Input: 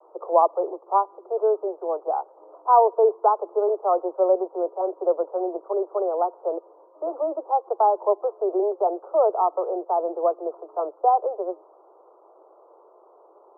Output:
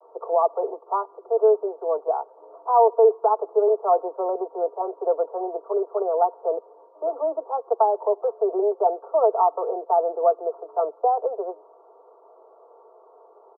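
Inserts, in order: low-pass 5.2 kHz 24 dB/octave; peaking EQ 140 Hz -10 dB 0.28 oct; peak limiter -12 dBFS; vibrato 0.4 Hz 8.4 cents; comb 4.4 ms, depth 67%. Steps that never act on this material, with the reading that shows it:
low-pass 5.2 kHz: input has nothing above 1.4 kHz; peaking EQ 140 Hz: input has nothing below 290 Hz

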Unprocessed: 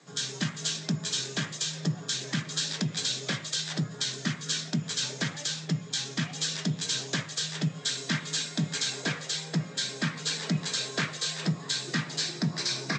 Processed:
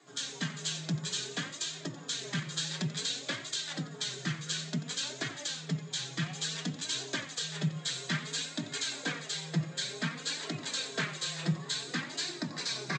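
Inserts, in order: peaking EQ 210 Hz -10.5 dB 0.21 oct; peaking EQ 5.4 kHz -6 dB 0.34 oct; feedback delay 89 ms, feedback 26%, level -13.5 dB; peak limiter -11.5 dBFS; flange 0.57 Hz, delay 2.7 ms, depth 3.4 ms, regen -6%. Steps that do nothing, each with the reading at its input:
peak limiter -11.5 dBFS: peak at its input -16.0 dBFS

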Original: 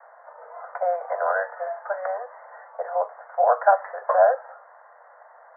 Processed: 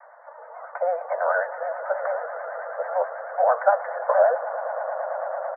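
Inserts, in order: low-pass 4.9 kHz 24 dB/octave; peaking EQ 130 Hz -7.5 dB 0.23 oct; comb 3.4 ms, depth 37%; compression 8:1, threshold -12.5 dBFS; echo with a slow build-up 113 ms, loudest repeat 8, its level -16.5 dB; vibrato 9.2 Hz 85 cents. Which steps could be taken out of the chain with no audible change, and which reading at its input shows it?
low-pass 4.9 kHz: input has nothing above 1.9 kHz; peaking EQ 130 Hz: input has nothing below 400 Hz

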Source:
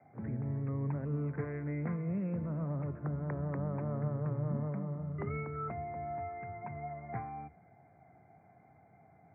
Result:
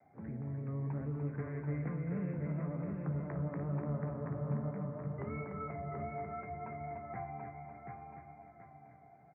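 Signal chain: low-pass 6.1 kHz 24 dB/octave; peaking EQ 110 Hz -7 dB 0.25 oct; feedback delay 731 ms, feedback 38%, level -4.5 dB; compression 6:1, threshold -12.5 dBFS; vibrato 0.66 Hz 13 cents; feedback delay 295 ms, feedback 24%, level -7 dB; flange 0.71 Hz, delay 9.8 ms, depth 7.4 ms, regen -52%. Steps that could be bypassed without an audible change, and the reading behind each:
low-pass 6.1 kHz: input has nothing above 1.4 kHz; compression, threshold -12.5 dBFS: peak at its input -24.0 dBFS

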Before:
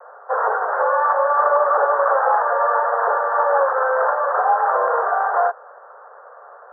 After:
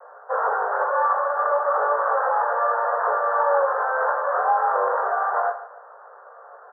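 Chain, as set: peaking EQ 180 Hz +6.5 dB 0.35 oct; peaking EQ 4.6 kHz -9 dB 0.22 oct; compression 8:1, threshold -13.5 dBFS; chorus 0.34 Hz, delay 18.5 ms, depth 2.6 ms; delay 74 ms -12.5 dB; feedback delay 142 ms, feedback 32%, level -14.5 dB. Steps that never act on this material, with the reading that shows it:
peaking EQ 180 Hz: input has nothing below 380 Hz; peaking EQ 4.6 kHz: input has nothing above 1.9 kHz

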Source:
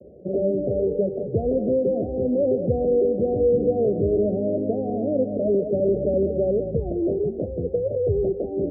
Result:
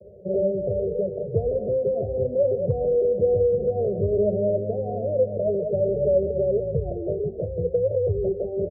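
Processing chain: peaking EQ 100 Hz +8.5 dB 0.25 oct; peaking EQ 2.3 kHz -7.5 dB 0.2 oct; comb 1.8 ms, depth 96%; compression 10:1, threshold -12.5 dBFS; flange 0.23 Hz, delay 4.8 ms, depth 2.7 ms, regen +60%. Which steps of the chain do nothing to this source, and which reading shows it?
peaking EQ 2.3 kHz: input has nothing above 760 Hz

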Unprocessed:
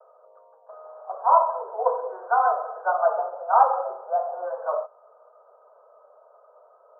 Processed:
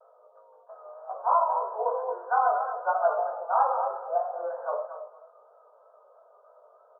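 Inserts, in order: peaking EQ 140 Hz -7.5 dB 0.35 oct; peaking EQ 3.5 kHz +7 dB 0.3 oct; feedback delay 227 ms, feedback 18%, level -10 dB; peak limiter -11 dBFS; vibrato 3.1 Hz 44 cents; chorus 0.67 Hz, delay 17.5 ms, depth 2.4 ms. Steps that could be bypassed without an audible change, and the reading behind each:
peaking EQ 140 Hz: input has nothing below 360 Hz; peaking EQ 3.5 kHz: input has nothing above 1.6 kHz

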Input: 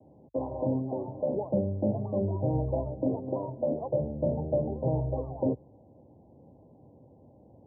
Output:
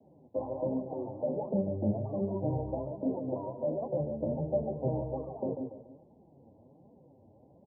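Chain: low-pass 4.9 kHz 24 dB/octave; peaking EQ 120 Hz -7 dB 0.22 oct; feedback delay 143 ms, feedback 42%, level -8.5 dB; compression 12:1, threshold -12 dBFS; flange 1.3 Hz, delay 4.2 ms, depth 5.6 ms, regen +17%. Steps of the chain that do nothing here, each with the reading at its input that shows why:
low-pass 4.9 kHz: input has nothing above 1 kHz; compression, threshold -12 dBFS: peak at its input -15.5 dBFS

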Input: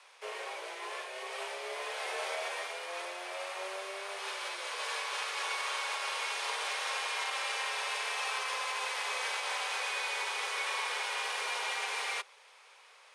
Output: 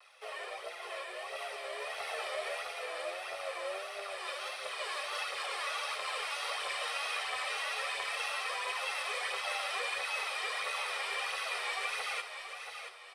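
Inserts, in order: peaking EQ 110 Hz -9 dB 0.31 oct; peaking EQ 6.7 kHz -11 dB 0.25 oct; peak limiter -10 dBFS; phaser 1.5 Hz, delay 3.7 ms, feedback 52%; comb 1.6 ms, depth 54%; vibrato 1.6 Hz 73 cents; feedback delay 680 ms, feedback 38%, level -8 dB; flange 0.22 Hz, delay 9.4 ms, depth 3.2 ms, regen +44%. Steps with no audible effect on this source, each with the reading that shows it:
peaking EQ 110 Hz: input has nothing below 340 Hz; peak limiter -10 dBFS: peak at its input -23.0 dBFS

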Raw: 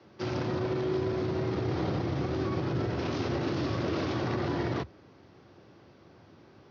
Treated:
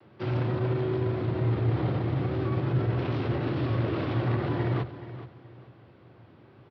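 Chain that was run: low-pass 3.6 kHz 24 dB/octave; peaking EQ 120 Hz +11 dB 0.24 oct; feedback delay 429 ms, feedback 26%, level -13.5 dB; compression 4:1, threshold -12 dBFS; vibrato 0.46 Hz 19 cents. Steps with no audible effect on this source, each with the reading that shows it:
compression, threshold -12 dBFS: peak at its input -15.0 dBFS

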